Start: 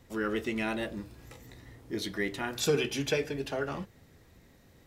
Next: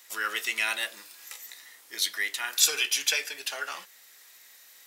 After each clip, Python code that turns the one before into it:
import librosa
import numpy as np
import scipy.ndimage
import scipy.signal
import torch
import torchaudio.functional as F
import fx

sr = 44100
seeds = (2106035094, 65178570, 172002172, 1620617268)

y = scipy.signal.sosfilt(scipy.signal.butter(2, 1400.0, 'highpass', fs=sr, output='sos'), x)
y = fx.high_shelf(y, sr, hz=4900.0, db=12.0)
y = fx.rider(y, sr, range_db=3, speed_s=2.0)
y = F.gain(torch.from_numpy(y), 5.5).numpy()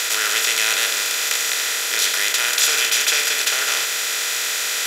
y = fx.bin_compress(x, sr, power=0.2)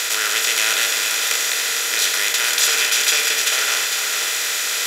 y = x + 10.0 ** (-6.5 / 20.0) * np.pad(x, (int(454 * sr / 1000.0), 0))[:len(x)]